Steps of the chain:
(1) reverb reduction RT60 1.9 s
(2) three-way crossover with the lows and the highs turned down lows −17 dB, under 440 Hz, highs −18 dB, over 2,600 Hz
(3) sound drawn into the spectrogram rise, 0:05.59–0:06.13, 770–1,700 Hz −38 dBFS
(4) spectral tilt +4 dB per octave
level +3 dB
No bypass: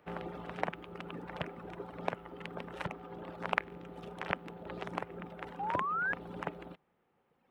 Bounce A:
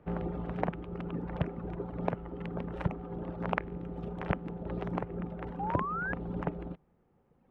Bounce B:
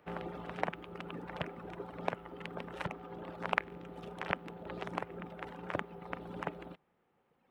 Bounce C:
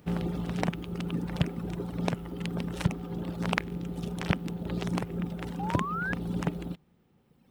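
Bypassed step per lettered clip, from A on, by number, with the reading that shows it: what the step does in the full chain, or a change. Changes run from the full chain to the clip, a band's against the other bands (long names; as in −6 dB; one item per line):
4, 125 Hz band +11.0 dB
3, 1 kHz band −3.0 dB
2, 125 Hz band +12.0 dB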